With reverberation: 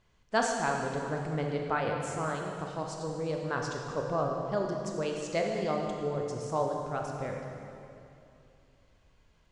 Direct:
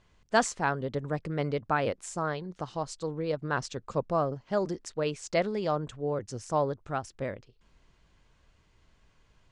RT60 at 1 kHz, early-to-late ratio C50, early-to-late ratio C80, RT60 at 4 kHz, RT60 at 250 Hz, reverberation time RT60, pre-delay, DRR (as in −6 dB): 2.5 s, 2.0 dB, 3.0 dB, 2.3 s, 3.2 s, 2.7 s, 19 ms, 1.0 dB